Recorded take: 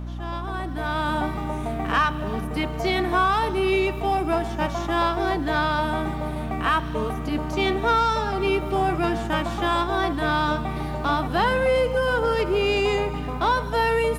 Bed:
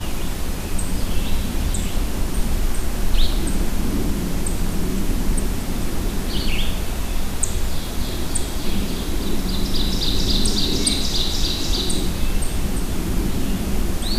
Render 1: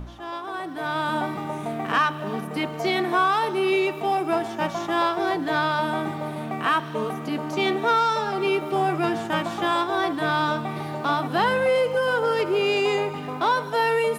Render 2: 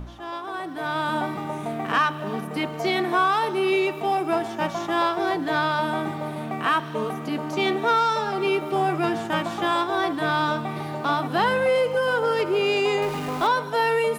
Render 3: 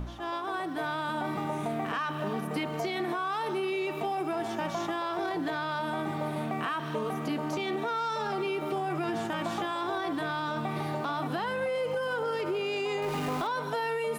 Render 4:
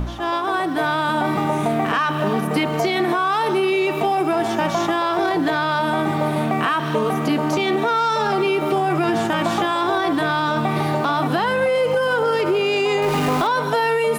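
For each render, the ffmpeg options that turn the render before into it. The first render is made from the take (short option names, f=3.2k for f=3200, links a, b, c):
-af "bandreject=f=60:t=h:w=4,bandreject=f=120:t=h:w=4,bandreject=f=180:t=h:w=4,bandreject=f=240:t=h:w=4,bandreject=f=300:t=h:w=4"
-filter_complex "[0:a]asettb=1/sr,asplit=3[a][b][c];[a]atrim=end=13.024[d];[b]atrim=start=13.02:end=13.47,asetpts=PTS-STARTPTS,afade=t=in:d=0.004:c=qsin,afade=t=out:st=0.446:d=0.004:c=qsin,aeval=exprs='val(0)+0.5*0.0282*sgn(val(0))':c=same[e];[c]atrim=start=13.466[f];[d][e]acrossfade=d=0.004:c1=hsin:c2=qsin[g];[g][f]acrossfade=d=0.004:c1=qsin:c2=hsin"
-af "alimiter=limit=-19.5dB:level=0:latency=1:release=20,acompressor=threshold=-28dB:ratio=6"
-af "volume=12dB"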